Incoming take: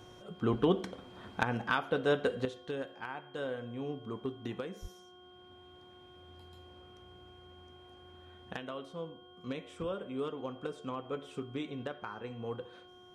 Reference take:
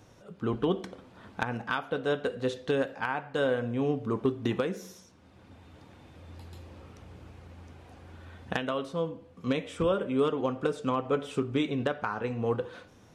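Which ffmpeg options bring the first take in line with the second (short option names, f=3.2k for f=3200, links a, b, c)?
-filter_complex "[0:a]bandreject=f=362.4:t=h:w=4,bandreject=f=724.8:t=h:w=4,bandreject=f=1.0872k:t=h:w=4,bandreject=f=1.4496k:t=h:w=4,bandreject=f=3.2k:w=30,asplit=3[a][b][c];[a]afade=t=out:st=4.81:d=0.02[d];[b]highpass=f=140:w=0.5412,highpass=f=140:w=1.3066,afade=t=in:st=4.81:d=0.02,afade=t=out:st=4.93:d=0.02[e];[c]afade=t=in:st=4.93:d=0.02[f];[d][e][f]amix=inputs=3:normalize=0,asetnsamples=n=441:p=0,asendcmd='2.45 volume volume 10.5dB',volume=0dB"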